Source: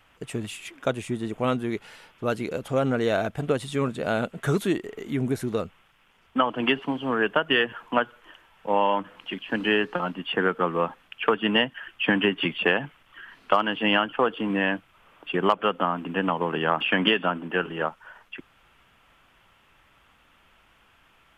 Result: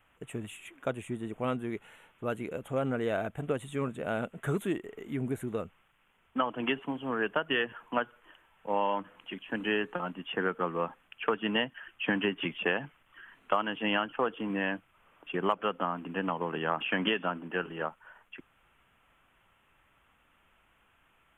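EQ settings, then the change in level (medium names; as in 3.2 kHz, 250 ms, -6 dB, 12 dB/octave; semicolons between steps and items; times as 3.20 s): Butterworth band-stop 4.9 kHz, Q 1.2; -7.0 dB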